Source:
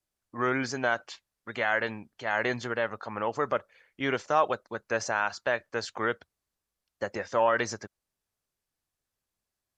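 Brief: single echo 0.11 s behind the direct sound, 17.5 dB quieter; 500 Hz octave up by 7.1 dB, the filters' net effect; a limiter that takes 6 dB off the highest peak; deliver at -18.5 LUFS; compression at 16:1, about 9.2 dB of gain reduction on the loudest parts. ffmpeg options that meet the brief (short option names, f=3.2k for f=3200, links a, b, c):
-af "equalizer=f=500:t=o:g=8.5,acompressor=threshold=-23dB:ratio=16,alimiter=limit=-19dB:level=0:latency=1,aecho=1:1:110:0.133,volume=14dB"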